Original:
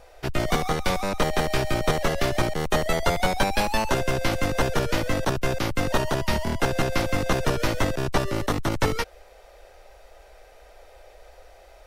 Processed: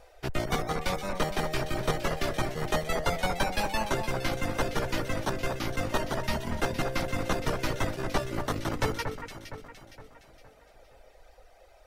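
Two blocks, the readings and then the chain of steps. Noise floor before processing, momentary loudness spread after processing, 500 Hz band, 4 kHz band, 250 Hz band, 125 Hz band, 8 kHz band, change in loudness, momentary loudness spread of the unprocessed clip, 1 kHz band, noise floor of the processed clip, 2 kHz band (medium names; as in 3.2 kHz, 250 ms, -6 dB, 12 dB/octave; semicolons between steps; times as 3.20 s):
-51 dBFS, 6 LU, -6.0 dB, -5.5 dB, -6.0 dB, -6.0 dB, -5.5 dB, -6.0 dB, 3 LU, -5.5 dB, -57 dBFS, -5.0 dB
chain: reverb removal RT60 1.9 s; on a send: echo whose repeats swap between lows and highs 232 ms, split 2 kHz, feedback 65%, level -6 dB; on the sum: trim -4.5 dB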